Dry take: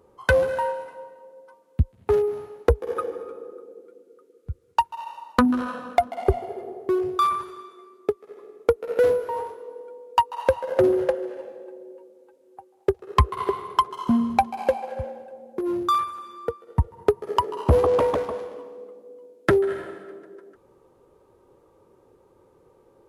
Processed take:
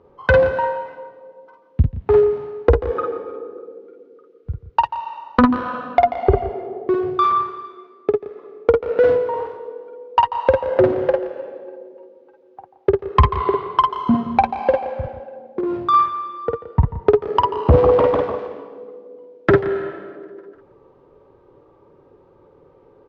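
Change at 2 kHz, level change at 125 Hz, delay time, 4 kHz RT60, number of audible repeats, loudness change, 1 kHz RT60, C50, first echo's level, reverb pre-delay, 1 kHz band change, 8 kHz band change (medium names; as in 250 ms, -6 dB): +4.5 dB, +6.0 dB, 50 ms, no reverb, 3, +5.5 dB, no reverb, no reverb, -4.0 dB, no reverb, +6.0 dB, no reading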